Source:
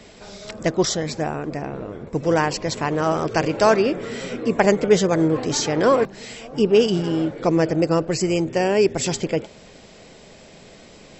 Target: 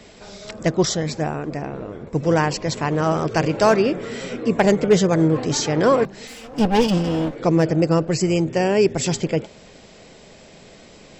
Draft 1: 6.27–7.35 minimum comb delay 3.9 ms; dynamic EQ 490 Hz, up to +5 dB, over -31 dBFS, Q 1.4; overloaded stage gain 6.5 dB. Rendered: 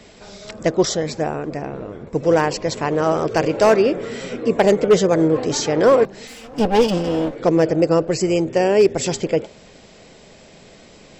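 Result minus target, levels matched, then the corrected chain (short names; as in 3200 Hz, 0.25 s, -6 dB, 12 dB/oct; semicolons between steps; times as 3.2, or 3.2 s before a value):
125 Hz band -5.5 dB
6.27–7.35 minimum comb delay 3.9 ms; dynamic EQ 150 Hz, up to +5 dB, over -31 dBFS, Q 1.4; overloaded stage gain 6.5 dB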